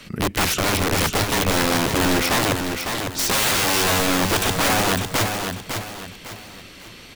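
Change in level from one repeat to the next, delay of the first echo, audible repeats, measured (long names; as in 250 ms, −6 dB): −9.0 dB, 553 ms, 3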